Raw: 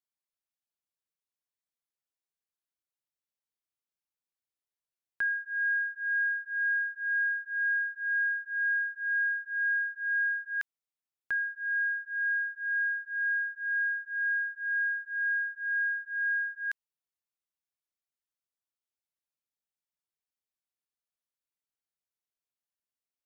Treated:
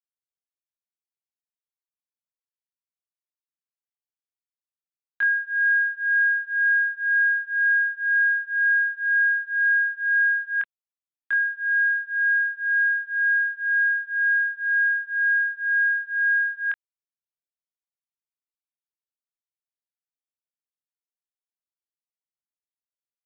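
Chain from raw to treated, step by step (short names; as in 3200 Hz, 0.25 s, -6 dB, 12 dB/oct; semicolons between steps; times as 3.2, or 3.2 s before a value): doubler 24 ms -4 dB; gain +5 dB; G.726 40 kbps 8000 Hz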